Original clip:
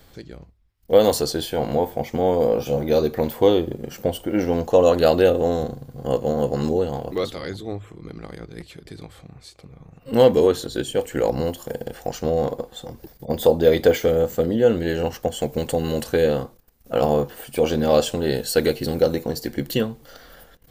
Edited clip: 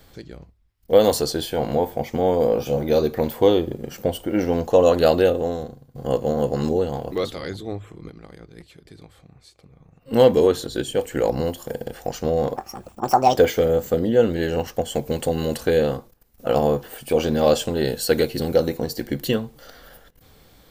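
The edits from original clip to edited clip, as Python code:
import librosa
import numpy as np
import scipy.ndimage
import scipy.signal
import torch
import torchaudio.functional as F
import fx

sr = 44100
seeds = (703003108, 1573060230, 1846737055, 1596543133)

y = fx.edit(x, sr, fx.fade_out_to(start_s=5.11, length_s=0.84, floor_db=-15.0),
    fx.clip_gain(start_s=8.1, length_s=2.01, db=-6.5),
    fx.speed_span(start_s=12.56, length_s=1.28, speed=1.57), tone=tone)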